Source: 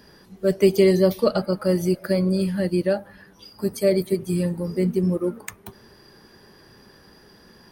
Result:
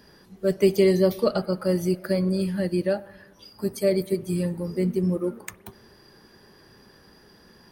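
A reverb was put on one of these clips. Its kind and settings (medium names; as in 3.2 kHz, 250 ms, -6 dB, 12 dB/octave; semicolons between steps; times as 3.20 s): spring tank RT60 1.1 s, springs 55 ms, DRR 20 dB; trim -2.5 dB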